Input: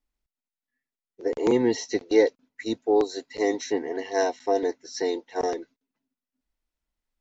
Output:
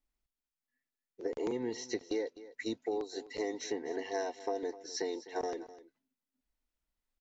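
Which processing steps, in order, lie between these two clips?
compressor 6:1, threshold -29 dBFS, peak gain reduction 15 dB; on a send: echo 0.254 s -16.5 dB; on the sum: gain -3.5 dB

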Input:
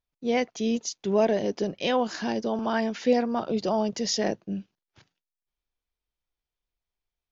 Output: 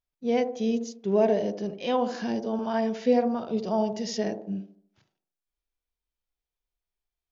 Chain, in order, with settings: harmonic-percussive split percussive -11 dB; band-limited delay 74 ms, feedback 42%, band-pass 450 Hz, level -7 dB

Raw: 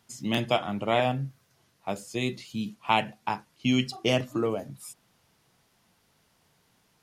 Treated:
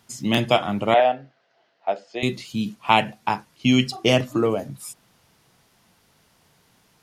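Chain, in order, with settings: 0.94–2.23 speaker cabinet 480–3900 Hz, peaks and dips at 680 Hz +7 dB, 1100 Hz -8 dB, 2400 Hz -5 dB, 3600 Hz -5 dB; gain +6.5 dB

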